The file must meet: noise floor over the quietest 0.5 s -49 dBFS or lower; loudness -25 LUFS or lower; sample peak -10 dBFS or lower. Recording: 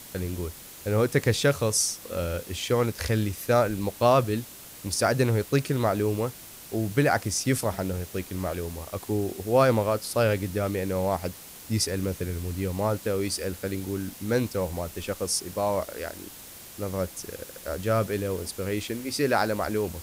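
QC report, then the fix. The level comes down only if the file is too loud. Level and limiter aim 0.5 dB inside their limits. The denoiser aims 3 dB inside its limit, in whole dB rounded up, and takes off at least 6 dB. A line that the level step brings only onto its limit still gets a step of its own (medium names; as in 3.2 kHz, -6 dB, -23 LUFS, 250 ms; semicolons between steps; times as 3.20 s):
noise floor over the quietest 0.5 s -45 dBFS: fail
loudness -27.0 LUFS: pass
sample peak -9.0 dBFS: fail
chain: noise reduction 7 dB, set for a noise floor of -45 dBFS; peak limiter -10.5 dBFS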